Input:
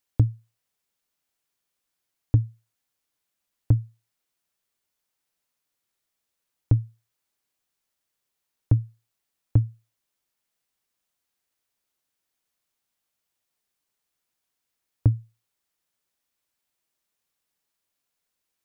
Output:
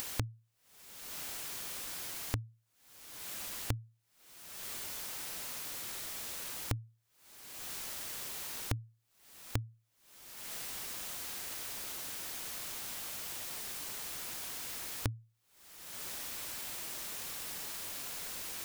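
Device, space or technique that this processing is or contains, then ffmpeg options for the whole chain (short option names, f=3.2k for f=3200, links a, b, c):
upward and downward compression: -af "acompressor=mode=upward:threshold=-29dB:ratio=2.5,acompressor=threshold=-48dB:ratio=6,volume=11.5dB"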